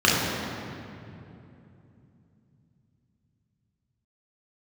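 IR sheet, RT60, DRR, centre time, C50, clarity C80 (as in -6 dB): 2.8 s, -6.5 dB, 0.141 s, -1.5 dB, 0.5 dB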